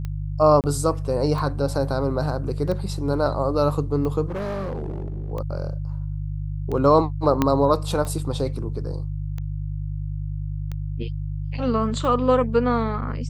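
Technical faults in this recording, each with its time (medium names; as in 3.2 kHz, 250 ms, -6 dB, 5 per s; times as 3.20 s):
hum 50 Hz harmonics 3 -28 dBFS
tick 45 rpm -19 dBFS
0.61–0.64 s: dropout 28 ms
4.26–5.32 s: clipped -25 dBFS
7.42 s: pop -6 dBFS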